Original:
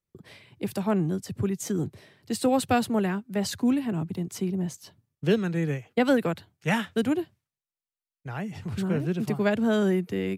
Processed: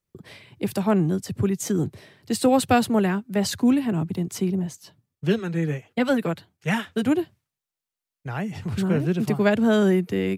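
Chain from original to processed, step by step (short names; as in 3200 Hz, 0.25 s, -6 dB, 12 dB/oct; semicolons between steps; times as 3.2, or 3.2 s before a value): 4.59–7.06 flange 1.4 Hz, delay 0.5 ms, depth 6.6 ms, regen -30%; gain +4.5 dB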